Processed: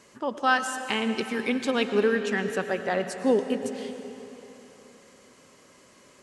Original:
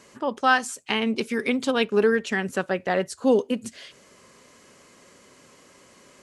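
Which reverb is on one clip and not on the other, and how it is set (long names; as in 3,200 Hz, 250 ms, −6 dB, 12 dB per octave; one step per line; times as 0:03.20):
comb and all-pass reverb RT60 3.4 s, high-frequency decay 0.85×, pre-delay 70 ms, DRR 7.5 dB
level −3 dB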